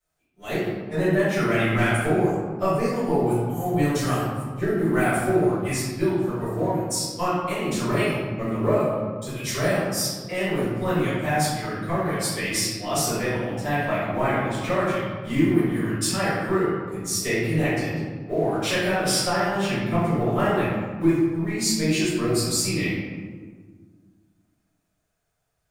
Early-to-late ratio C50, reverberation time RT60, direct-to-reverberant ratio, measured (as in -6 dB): -2.5 dB, 1.6 s, -15.0 dB